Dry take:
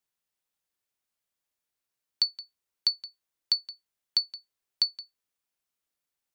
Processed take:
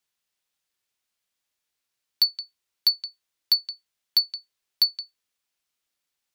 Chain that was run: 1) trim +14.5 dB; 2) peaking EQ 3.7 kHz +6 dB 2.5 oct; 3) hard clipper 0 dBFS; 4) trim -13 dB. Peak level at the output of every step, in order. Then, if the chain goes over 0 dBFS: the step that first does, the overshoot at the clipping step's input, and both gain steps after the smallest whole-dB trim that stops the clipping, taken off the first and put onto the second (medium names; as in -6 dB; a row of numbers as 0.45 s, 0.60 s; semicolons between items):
+1.0 dBFS, +7.0 dBFS, 0.0 dBFS, -13.0 dBFS; step 1, 7.0 dB; step 1 +7.5 dB, step 4 -6 dB